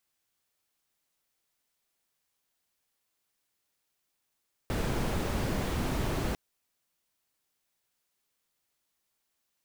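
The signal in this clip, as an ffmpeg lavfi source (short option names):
-f lavfi -i "anoisesrc=c=brown:a=0.148:d=1.65:r=44100:seed=1"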